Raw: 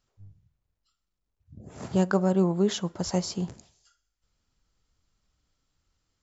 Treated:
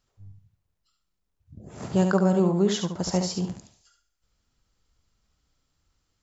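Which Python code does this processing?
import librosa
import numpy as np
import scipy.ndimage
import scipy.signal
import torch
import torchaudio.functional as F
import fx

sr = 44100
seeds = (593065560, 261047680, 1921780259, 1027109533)

y = fx.echo_feedback(x, sr, ms=71, feedback_pct=21, wet_db=-6.5)
y = y * librosa.db_to_amplitude(1.5)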